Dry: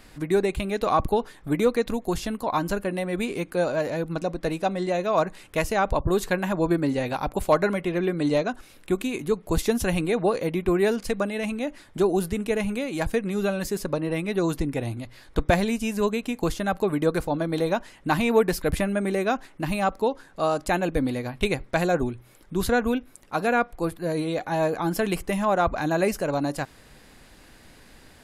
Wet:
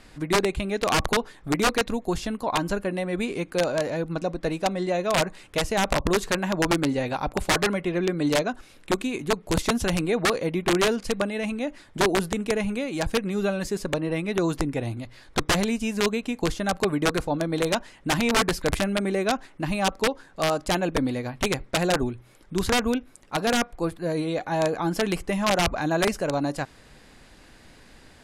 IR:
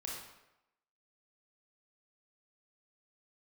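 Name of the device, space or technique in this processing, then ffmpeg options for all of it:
overflowing digital effects unit: -af "aeval=exprs='(mod(5.31*val(0)+1,2)-1)/5.31':c=same,lowpass=9400"

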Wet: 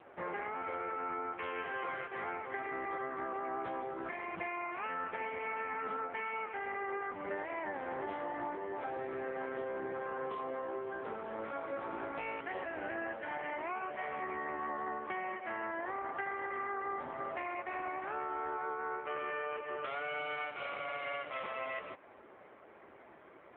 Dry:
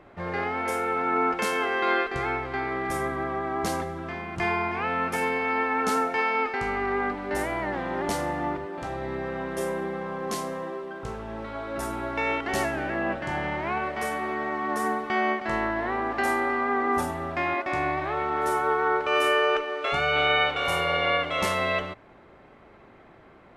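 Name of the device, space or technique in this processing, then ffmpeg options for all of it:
voicemail: -filter_complex "[0:a]asplit=3[s0][s1][s2];[s0]afade=t=out:st=14.46:d=0.02[s3];[s1]lowpass=11000,afade=t=in:st=14.46:d=0.02,afade=t=out:st=15.51:d=0.02[s4];[s2]afade=t=in:st=15.51:d=0.02[s5];[s3][s4][s5]amix=inputs=3:normalize=0,highpass=320,lowpass=3000,acompressor=threshold=0.02:ratio=10" -ar 8000 -c:a libopencore_amrnb -b:a 5900

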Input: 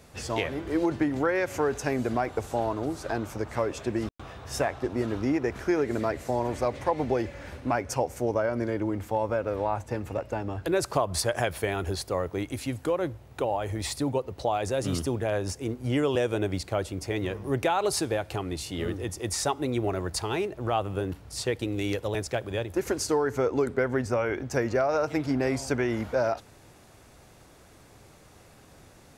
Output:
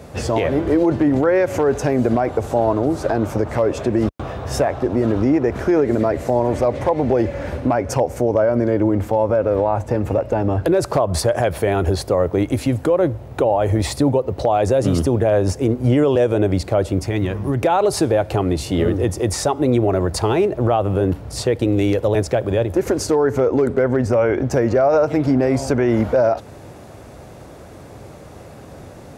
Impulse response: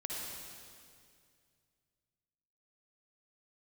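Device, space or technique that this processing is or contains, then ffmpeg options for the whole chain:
mastering chain: -filter_complex "[0:a]highpass=53,equalizer=f=580:t=o:w=0.58:g=4,acompressor=threshold=0.0316:ratio=1.5,tiltshelf=f=1300:g=5,asoftclip=type=hard:threshold=0.188,alimiter=level_in=7.94:limit=0.891:release=50:level=0:latency=1,asettb=1/sr,asplit=3[s0][s1][s2];[s0]atrim=end=17.014[s3];[s1]atrim=start=17.01:end=17.61,asetpts=PTS-STARTPTS,afade=t=in:d=0.004:c=qsin,afade=t=out:st=0.596:d=0.004:c=qsin,equalizer=f=490:t=o:w=1.1:g=-9[s4];[s2]atrim=start=17.606[s5];[s3][s4]acrossfade=d=0.004:c1=hsin:c2=qsin[s6];[s6][s5]acrossfade=d=0.004:c1=qsin:c2=hsin,volume=0.447"

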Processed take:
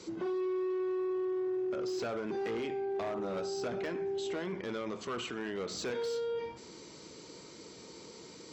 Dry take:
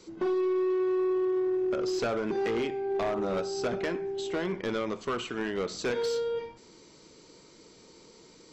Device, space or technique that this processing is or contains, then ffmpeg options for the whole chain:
podcast mastering chain: -af "highpass=61,deesser=1,acompressor=threshold=0.0141:ratio=2.5,alimiter=level_in=3.16:limit=0.0631:level=0:latency=1:release=17,volume=0.316,volume=1.68" -ar 44100 -c:a libmp3lame -b:a 96k

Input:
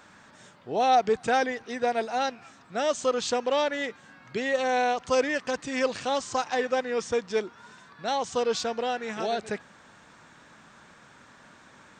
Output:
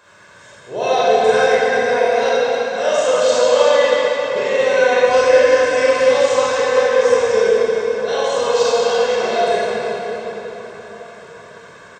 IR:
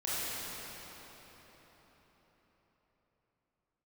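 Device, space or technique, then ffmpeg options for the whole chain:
cathedral: -filter_complex "[0:a]highpass=f=110:p=1[s0];[1:a]atrim=start_sample=2205[s1];[s0][s1]afir=irnorm=-1:irlink=0,aecho=1:1:1.9:0.66,volume=1.41"

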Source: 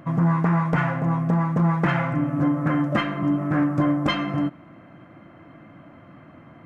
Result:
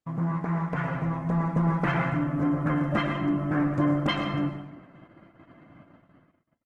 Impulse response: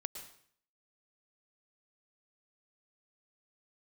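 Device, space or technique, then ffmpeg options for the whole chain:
speakerphone in a meeting room: -filter_complex "[1:a]atrim=start_sample=2205[s0];[0:a][s0]afir=irnorm=-1:irlink=0,asplit=2[s1][s2];[s2]adelay=160,highpass=300,lowpass=3400,asoftclip=type=hard:threshold=0.1,volume=0.0891[s3];[s1][s3]amix=inputs=2:normalize=0,dynaudnorm=f=460:g=5:m=1.68,agate=range=0.0112:threshold=0.00708:ratio=16:detection=peak,volume=0.501" -ar 48000 -c:a libopus -b:a 16k

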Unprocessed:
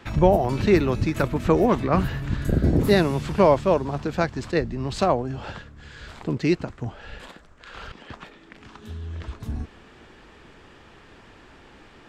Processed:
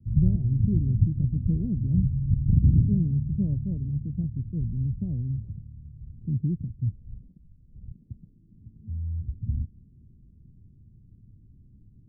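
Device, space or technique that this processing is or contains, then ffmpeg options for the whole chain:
the neighbour's flat through the wall: -af "lowpass=f=190:w=0.5412,lowpass=f=190:w=1.3066,equalizer=f=110:t=o:w=0.78:g=6.5"

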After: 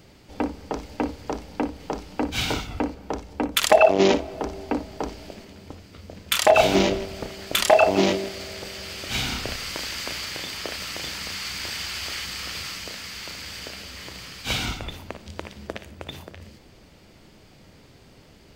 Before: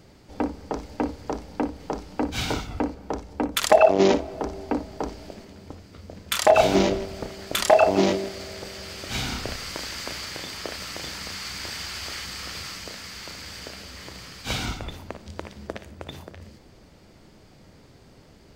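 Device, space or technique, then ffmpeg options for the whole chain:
presence and air boost: -af "equalizer=f=2800:t=o:w=1:g=5,highshelf=f=11000:g=6"

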